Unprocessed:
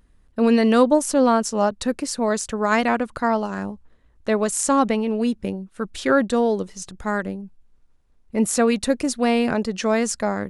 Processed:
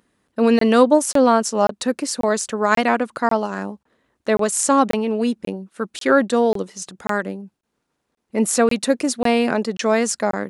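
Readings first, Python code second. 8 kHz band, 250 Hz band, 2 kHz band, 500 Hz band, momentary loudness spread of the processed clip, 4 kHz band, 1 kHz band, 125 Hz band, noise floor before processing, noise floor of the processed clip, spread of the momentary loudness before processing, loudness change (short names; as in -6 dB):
+3.0 dB, +0.5 dB, +2.5 dB, +2.5 dB, 15 LU, +3.0 dB, +3.0 dB, 0.0 dB, -58 dBFS, -75 dBFS, 13 LU, +2.0 dB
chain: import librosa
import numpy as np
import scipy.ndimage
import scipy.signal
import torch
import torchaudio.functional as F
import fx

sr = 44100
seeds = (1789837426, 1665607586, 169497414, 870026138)

y = scipy.signal.sosfilt(scipy.signal.butter(2, 210.0, 'highpass', fs=sr, output='sos'), x)
y = fx.buffer_crackle(y, sr, first_s=0.59, period_s=0.54, block=1024, kind='zero')
y = y * 10.0 ** (3.0 / 20.0)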